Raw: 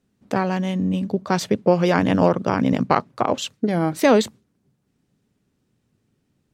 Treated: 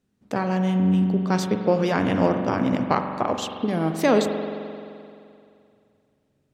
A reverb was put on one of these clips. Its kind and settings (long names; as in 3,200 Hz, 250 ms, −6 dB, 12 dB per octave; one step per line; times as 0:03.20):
spring reverb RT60 2.5 s, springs 43 ms, chirp 70 ms, DRR 5.5 dB
level −4 dB